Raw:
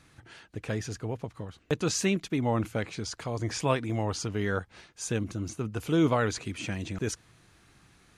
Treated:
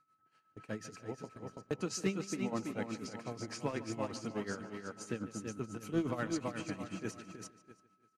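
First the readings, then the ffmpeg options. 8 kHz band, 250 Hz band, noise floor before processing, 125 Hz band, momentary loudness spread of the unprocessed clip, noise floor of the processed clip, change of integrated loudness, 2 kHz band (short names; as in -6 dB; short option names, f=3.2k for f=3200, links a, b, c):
-9.5 dB, -7.5 dB, -61 dBFS, -12.5 dB, 12 LU, -75 dBFS, -9.0 dB, -9.5 dB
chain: -filter_complex "[0:a]flanger=delay=2.5:depth=1.8:regen=-68:speed=1.8:shape=triangular,highpass=f=140:w=0.5412,highpass=f=140:w=1.3066,bandreject=f=3.5k:w=7.5,asoftclip=type=hard:threshold=-22dB,asplit=2[a][b];[b]aecho=0:1:329|658|987|1316|1645:0.562|0.231|0.0945|0.0388|0.0159[c];[a][c]amix=inputs=2:normalize=0,aeval=exprs='val(0)+0.00316*sin(2*PI*1300*n/s)':c=same,agate=range=-15dB:threshold=-45dB:ratio=16:detection=peak,lowshelf=f=230:g=5.5,tremolo=f=8.2:d=0.77,asplit=2[d][e];[e]adelay=147,lowpass=f=4.7k:p=1,volume=-15dB,asplit=2[f][g];[g]adelay=147,lowpass=f=4.7k:p=1,volume=0.39,asplit=2[h][i];[i]adelay=147,lowpass=f=4.7k:p=1,volume=0.39,asplit=2[j][k];[k]adelay=147,lowpass=f=4.7k:p=1,volume=0.39[l];[f][h][j][l]amix=inputs=4:normalize=0[m];[d][m]amix=inputs=2:normalize=0,volume=-3.5dB"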